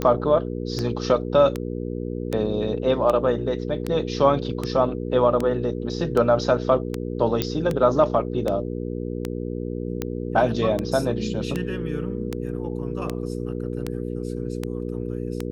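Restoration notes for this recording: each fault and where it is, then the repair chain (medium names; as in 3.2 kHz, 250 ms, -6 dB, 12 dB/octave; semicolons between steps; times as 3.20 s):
hum 60 Hz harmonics 8 -29 dBFS
tick 78 rpm -12 dBFS
7.42 s: pop -7 dBFS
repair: de-click; de-hum 60 Hz, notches 8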